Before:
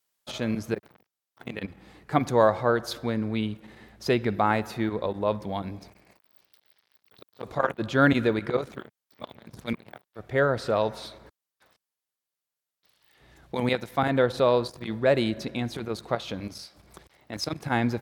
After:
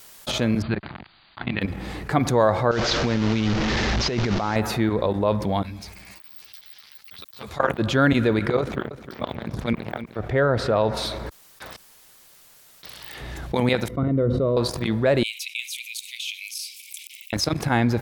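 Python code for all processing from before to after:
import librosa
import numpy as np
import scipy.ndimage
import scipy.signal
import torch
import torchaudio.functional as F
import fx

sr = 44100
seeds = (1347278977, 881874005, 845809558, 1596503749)

y = fx.chain(x, sr, fx.brickwall_lowpass(high_hz=4800.0),
    fx.peak_eq(hz=470.0, db=-12.5, octaves=0.62), at=(0.62, 1.61))
y = fx.chain(y, sr, fx.delta_mod(bps=32000, step_db=-28.0),
    fx.over_compress(threshold_db=-30.0, ratio=-1.0), at=(2.71, 4.56))
y = fx.chain(y, sr, fx.tone_stack(knobs='5-5-5'),
    fx.ensemble(), at=(5.63, 7.6))
y = fx.chain(y, sr, fx.high_shelf(hz=4700.0, db=-11.5),
    fx.echo_single(ms=307, db=-23.5), at=(8.6, 10.97))
y = fx.chain(y, sr, fx.moving_average(points=53),
    fx.hum_notches(base_hz=50, count=5),
    fx.sustainer(db_per_s=47.0), at=(13.88, 14.57))
y = fx.chain(y, sr, fx.steep_highpass(hz=2300.0, slope=96),
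    fx.peak_eq(hz=4400.0, db=-11.0, octaves=0.94), at=(15.23, 17.33))
y = fx.low_shelf(y, sr, hz=83.0, db=8.5)
y = fx.env_flatten(y, sr, amount_pct=50)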